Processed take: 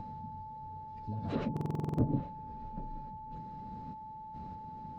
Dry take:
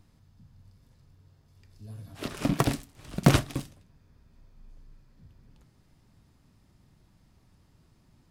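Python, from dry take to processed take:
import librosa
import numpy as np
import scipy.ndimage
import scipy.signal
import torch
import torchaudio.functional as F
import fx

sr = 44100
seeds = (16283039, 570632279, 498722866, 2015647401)

p1 = scipy.signal.sosfilt(scipy.signal.bessel(8, 5100.0, 'lowpass', norm='mag', fs=sr, output='sos'), x)
p2 = fx.env_lowpass_down(p1, sr, base_hz=410.0, full_db=-24.5)
p3 = fx.high_shelf(p2, sr, hz=3200.0, db=-11.5)
p4 = fx.over_compress(p3, sr, threshold_db=-46.0, ratio=-1.0)
p5 = p3 + (p4 * 10.0 ** (-0.5 / 20.0))
p6 = fx.tremolo_random(p5, sr, seeds[0], hz=2.9, depth_pct=75)
p7 = fx.small_body(p6, sr, hz=(200.0, 480.0, 4000.0), ring_ms=20, db=10)
p8 = fx.stretch_vocoder_free(p7, sr, factor=0.6)
p9 = p8 + 10.0 ** (-44.0 / 20.0) * np.sin(2.0 * np.pi * 870.0 * np.arange(len(p8)) / sr)
p10 = p9 + fx.echo_single(p9, sr, ms=827, db=-23.5, dry=0)
p11 = fx.buffer_glitch(p10, sr, at_s=(1.52,), block=2048, repeats=9)
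y = p11 * 10.0 ** (1.0 / 20.0)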